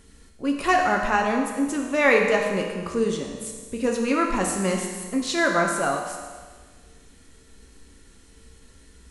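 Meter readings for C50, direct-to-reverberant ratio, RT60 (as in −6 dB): 3.5 dB, 1.0 dB, 1.5 s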